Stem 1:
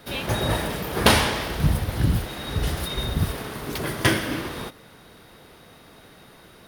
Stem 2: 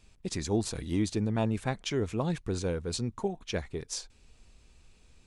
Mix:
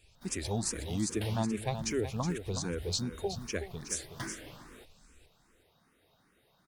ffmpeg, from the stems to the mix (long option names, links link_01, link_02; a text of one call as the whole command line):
ffmpeg -i stem1.wav -i stem2.wav -filter_complex "[0:a]adelay=150,volume=-17dB[link_01];[1:a]highshelf=frequency=3700:gain=8,volume=-1dB,asplit=3[link_02][link_03][link_04];[link_03]volume=-9.5dB[link_05];[link_04]apad=whole_len=300883[link_06];[link_01][link_06]sidechaincompress=threshold=-32dB:ratio=8:attack=43:release=494[link_07];[link_05]aecho=0:1:369:1[link_08];[link_07][link_02][link_08]amix=inputs=3:normalize=0,asplit=2[link_09][link_10];[link_10]afreqshift=2.5[link_11];[link_09][link_11]amix=inputs=2:normalize=1" out.wav